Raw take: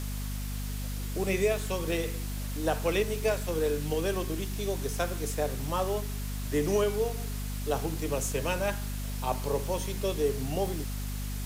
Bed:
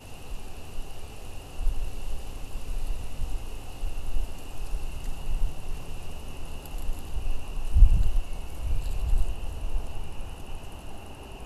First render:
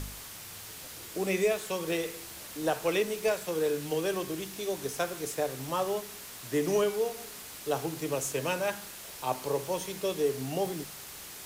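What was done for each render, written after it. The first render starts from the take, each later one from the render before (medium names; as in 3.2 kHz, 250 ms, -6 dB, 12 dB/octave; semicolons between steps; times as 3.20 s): de-hum 50 Hz, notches 5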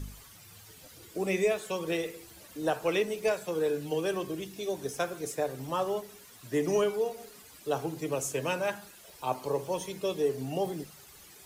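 noise reduction 12 dB, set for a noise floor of -45 dBFS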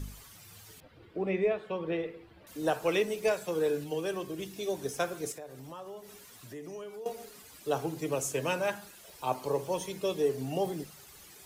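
0.80–2.47 s: distance through air 420 m; 3.84–4.39 s: gain -3 dB; 5.32–7.06 s: compression 3:1, threshold -45 dBFS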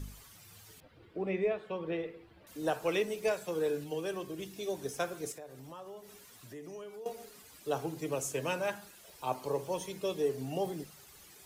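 trim -3 dB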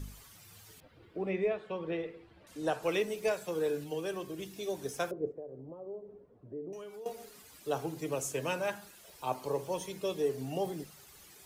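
1.31–2.83 s: low-pass 10 kHz; 5.11–6.73 s: resonant low-pass 470 Hz, resonance Q 2.1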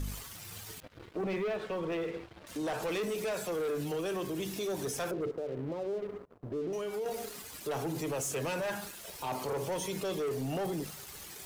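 waveshaping leveller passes 3; peak limiter -29.5 dBFS, peak gain reduction 9 dB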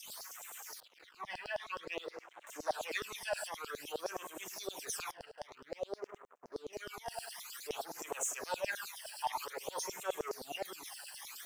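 LFO high-pass saw down 9.6 Hz 540–5400 Hz; phase shifter stages 12, 0.52 Hz, lowest notch 370–4600 Hz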